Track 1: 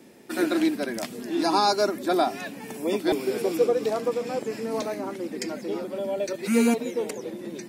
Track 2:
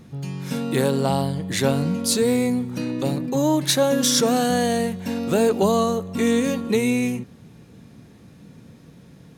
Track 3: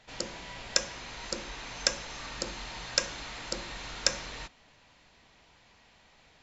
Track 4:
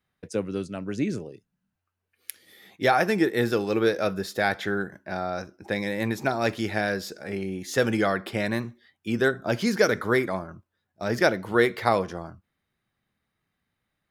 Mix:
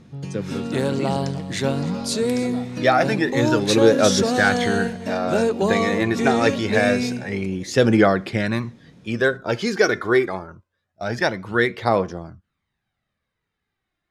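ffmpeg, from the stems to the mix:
ffmpeg -i stem1.wav -i stem2.wav -i stem3.wav -i stem4.wav -filter_complex "[0:a]alimiter=limit=-18dB:level=0:latency=1,adelay=350,volume=-12.5dB[link_01];[1:a]volume=-2dB,asplit=2[link_02][link_03];[link_03]volume=-17dB[link_04];[2:a]adelay=500,volume=-13.5dB[link_05];[3:a]dynaudnorm=framelen=330:gausssize=21:maxgain=11.5dB,aphaser=in_gain=1:out_gain=1:delay=2.9:decay=0.46:speed=0.25:type=triangular,volume=-0.5dB[link_06];[link_04]aecho=0:1:301:1[link_07];[link_01][link_02][link_05][link_06][link_07]amix=inputs=5:normalize=0,lowpass=7400" out.wav

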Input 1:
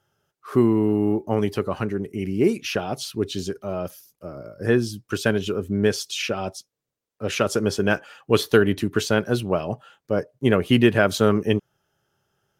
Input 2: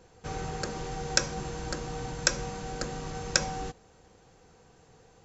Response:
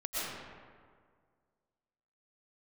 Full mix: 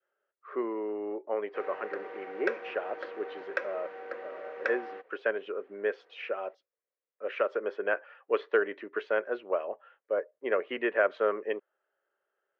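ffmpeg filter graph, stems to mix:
-filter_complex "[0:a]adynamicequalizer=threshold=0.0158:dfrequency=930:dqfactor=1.7:tfrequency=930:tqfactor=1.7:attack=5:release=100:ratio=0.375:range=2:mode=boostabove:tftype=bell,volume=-8dB[link_01];[1:a]adelay=1300,volume=-2.5dB[link_02];[link_01][link_02]amix=inputs=2:normalize=0,highpass=frequency=410:width=0.5412,highpass=frequency=410:width=1.3066,equalizer=frequency=540:width_type=q:width=4:gain=5,equalizer=frequency=840:width_type=q:width=4:gain=-7,equalizer=frequency=1900:width_type=q:width=4:gain=4,lowpass=frequency=2300:width=0.5412,lowpass=frequency=2300:width=1.3066"

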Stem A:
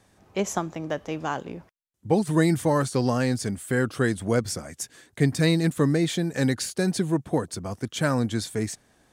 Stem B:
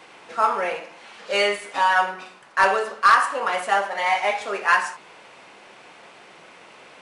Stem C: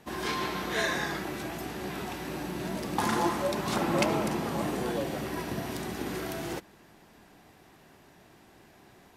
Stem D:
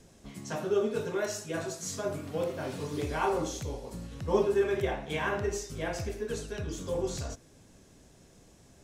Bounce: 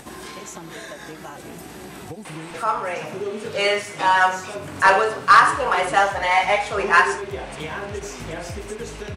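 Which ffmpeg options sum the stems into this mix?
ffmpeg -i stem1.wav -i stem2.wav -i stem3.wav -i stem4.wav -filter_complex "[0:a]asplit=2[link_01][link_02];[link_02]adelay=3.5,afreqshift=-2.9[link_03];[link_01][link_03]amix=inputs=2:normalize=1,volume=-14dB[link_04];[1:a]dynaudnorm=framelen=640:gausssize=5:maxgain=11.5dB,adelay=2250,volume=-2.5dB[link_05];[2:a]volume=-15.5dB[link_06];[3:a]adelay=2500,volume=-2dB[link_07];[link_04][link_06]amix=inputs=2:normalize=0,equalizer=frequency=8600:width_type=o:width=0.72:gain=9,acompressor=threshold=-46dB:ratio=2.5,volume=0dB[link_08];[link_05][link_07][link_08]amix=inputs=3:normalize=0,acompressor=mode=upward:threshold=-24dB:ratio=2.5" out.wav

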